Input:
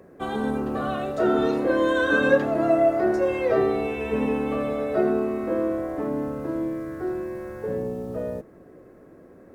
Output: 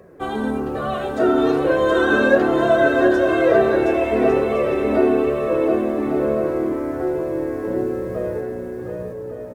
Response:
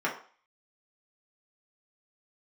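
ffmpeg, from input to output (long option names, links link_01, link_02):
-af "aecho=1:1:720|1152|1411|1567|1660:0.631|0.398|0.251|0.158|0.1,flanger=delay=1.6:depth=1.7:regen=-43:speed=1.1:shape=triangular,volume=7dB"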